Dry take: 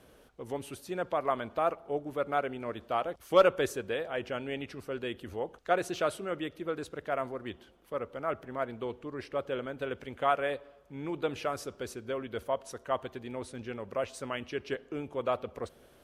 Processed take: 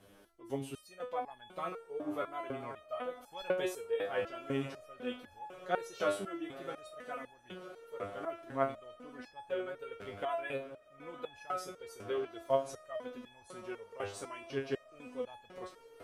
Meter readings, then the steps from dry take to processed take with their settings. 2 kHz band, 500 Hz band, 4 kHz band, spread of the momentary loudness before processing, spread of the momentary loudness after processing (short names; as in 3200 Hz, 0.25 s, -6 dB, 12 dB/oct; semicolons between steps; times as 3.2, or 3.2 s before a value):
-6.0 dB, -6.0 dB, -6.0 dB, 11 LU, 14 LU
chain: diffused feedback echo 0.947 s, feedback 73%, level -16 dB; stepped resonator 4 Hz 100–840 Hz; gain +7.5 dB